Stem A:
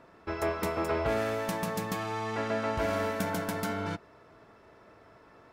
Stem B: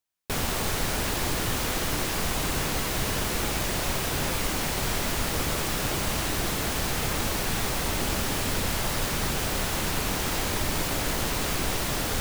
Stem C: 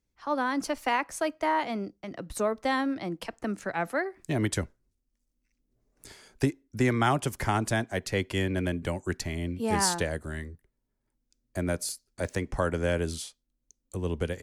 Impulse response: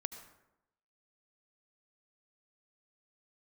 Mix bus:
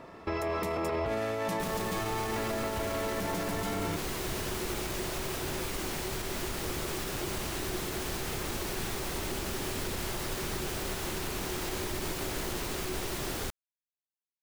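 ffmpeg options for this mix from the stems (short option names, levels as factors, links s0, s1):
-filter_complex "[0:a]bandreject=f=1500:w=6.6,alimiter=level_in=1.78:limit=0.0631:level=0:latency=1,volume=0.562,acontrast=85,volume=0.891,asplit=2[s0][s1];[s1]volume=0.299[s2];[1:a]equalizer=f=370:w=7.2:g=12,adelay=1300,volume=0.422[s3];[3:a]atrim=start_sample=2205[s4];[s2][s4]afir=irnorm=-1:irlink=0[s5];[s0][s3][s5]amix=inputs=3:normalize=0,alimiter=limit=0.0631:level=0:latency=1:release=39"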